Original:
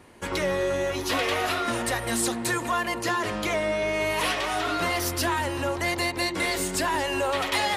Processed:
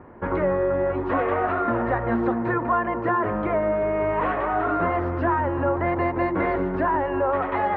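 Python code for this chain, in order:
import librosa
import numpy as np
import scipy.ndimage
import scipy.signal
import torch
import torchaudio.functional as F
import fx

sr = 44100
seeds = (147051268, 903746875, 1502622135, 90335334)

y = scipy.signal.sosfilt(scipy.signal.butter(4, 1500.0, 'lowpass', fs=sr, output='sos'), x)
y = fx.rider(y, sr, range_db=3, speed_s=0.5)
y = y * librosa.db_to_amplitude(5.0)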